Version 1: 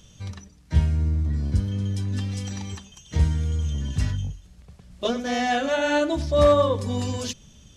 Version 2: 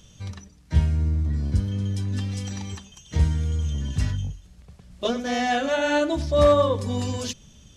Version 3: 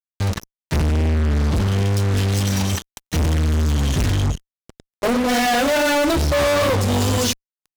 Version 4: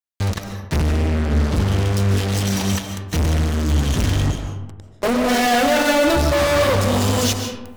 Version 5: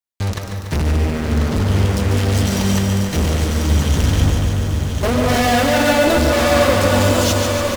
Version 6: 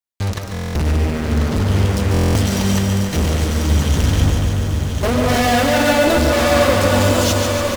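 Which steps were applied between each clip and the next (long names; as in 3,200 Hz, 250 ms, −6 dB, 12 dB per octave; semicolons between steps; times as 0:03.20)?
no processing that can be heard
tape wow and flutter 29 cents; healed spectral selection 0:05.03–0:05.26, 1,300–8,200 Hz before; fuzz pedal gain 40 dB, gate −38 dBFS; level −3 dB
reversed playback; upward compression, threshold −35 dBFS; reversed playback; comb and all-pass reverb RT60 1.1 s, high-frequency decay 0.45×, pre-delay 105 ms, DRR 5 dB
on a send: single-tap delay 1,042 ms −6 dB; on the sum: feedback echo at a low word length 144 ms, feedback 80%, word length 7 bits, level −7 dB
buffer that repeats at 0:00.52/0:02.12, samples 1,024, times 9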